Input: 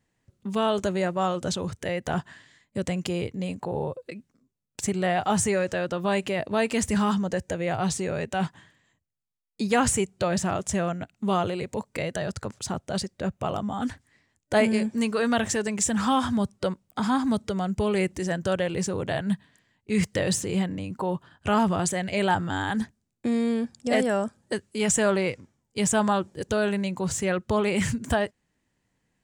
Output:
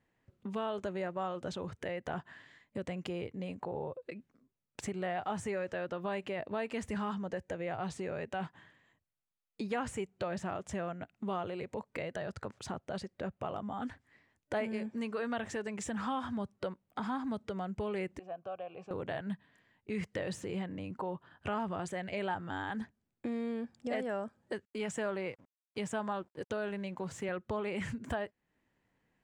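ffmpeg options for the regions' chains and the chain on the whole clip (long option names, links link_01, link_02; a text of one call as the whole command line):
ffmpeg -i in.wav -filter_complex "[0:a]asettb=1/sr,asplit=3[link_01][link_02][link_03];[link_01]atrim=end=18.194[link_04];[link_02]atrim=start=18.19:end=18.91,asetpts=PTS-STARTPTS,afade=type=in:duration=0.004:curve=qsin,afade=type=out:start_time=0.716:duration=0.004:curve=qsin,asplit=3[link_05][link_06][link_07];[link_05]bandpass=frequency=730:width_type=q:width=8,volume=0dB[link_08];[link_06]bandpass=frequency=1090:width_type=q:width=8,volume=-6dB[link_09];[link_07]bandpass=frequency=2440:width_type=q:width=8,volume=-9dB[link_10];[link_08][link_09][link_10]amix=inputs=3:normalize=0,equalizer=frequency=110:width=0.84:gain=11[link_11];[link_03]atrim=start=18.906[link_12];[link_04][link_11]acrossfade=duration=0.004:curve1=hsin:curve2=qsin[link_13];[link_13][link_12]acrossfade=duration=0.004:curve1=qsin:curve2=hsin,asettb=1/sr,asplit=3[link_14][link_15][link_16];[link_14]atrim=end=24.654[link_17];[link_15]atrim=start=24.65:end=27.29,asetpts=PTS-STARTPTS,afade=type=in:duration=0.004:curve=qsin,afade=type=out:start_time=2.636:duration=0.004:curve=qsin,highpass=frequency=94:width=0.5412,highpass=frequency=94:width=1.3066,aeval=exprs='sgn(val(0))*max(abs(val(0))-0.00282,0)':channel_layout=same[link_18];[link_16]atrim=start=27.286[link_19];[link_17][link_18]acrossfade=duration=0.004:curve1=hsin:curve2=qsin[link_20];[link_20][link_19]acrossfade=duration=0.004:curve1=qsin:curve2=hsin,bass=frequency=250:gain=-5,treble=frequency=4000:gain=-14,acompressor=threshold=-42dB:ratio=2" out.wav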